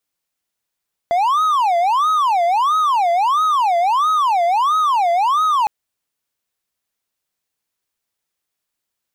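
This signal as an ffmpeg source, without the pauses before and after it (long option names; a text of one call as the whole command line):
ffmpeg -f lavfi -i "aevalsrc='0.282*(1-4*abs(mod((976*t-294/(2*PI*1.5)*sin(2*PI*1.5*t))+0.25,1)-0.5))':duration=4.56:sample_rate=44100" out.wav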